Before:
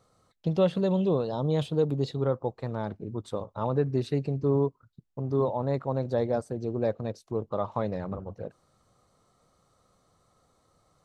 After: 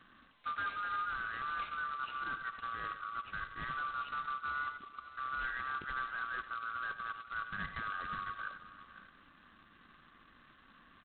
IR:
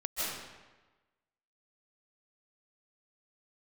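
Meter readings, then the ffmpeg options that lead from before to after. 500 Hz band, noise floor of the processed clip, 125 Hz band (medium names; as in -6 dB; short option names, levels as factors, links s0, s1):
-32.5 dB, -63 dBFS, -27.5 dB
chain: -filter_complex "[0:a]afftfilt=real='real(if(lt(b,960),b+48*(1-2*mod(floor(b/48),2)),b),0)':imag='imag(if(lt(b,960),b+48*(1-2*mod(floor(b/48),2)),b),0)':win_size=2048:overlap=0.75,asoftclip=type=tanh:threshold=0.0841,areverse,acompressor=threshold=0.01:ratio=5,areverse,adynamicequalizer=threshold=0.00141:dfrequency=1800:dqfactor=2.8:tfrequency=1800:tqfactor=2.8:attack=5:release=100:ratio=0.375:range=2.5:mode=cutabove:tftype=bell,asplit=2[s0][s1];[s1]alimiter=level_in=7.08:limit=0.0631:level=0:latency=1:release=241,volume=0.141,volume=0.75[s2];[s0][s2]amix=inputs=2:normalize=0,lowshelf=f=61:g=3.5,aecho=1:1:91|98|100|508|542|614:0.251|0.106|0.141|0.158|0.106|0.106" -ar 8000 -c:a adpcm_g726 -b:a 16k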